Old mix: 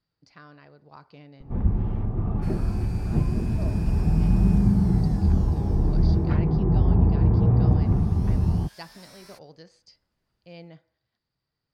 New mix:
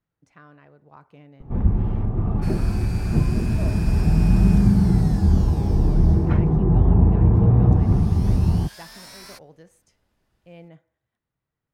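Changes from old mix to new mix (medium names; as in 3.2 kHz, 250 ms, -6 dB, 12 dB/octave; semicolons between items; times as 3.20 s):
speech: remove resonant low-pass 4.7 kHz, resonance Q 15; first sound +3.5 dB; second sound +8.5 dB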